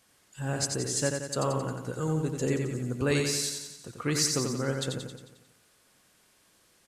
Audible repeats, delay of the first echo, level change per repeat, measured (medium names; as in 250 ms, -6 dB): 6, 89 ms, -5.0 dB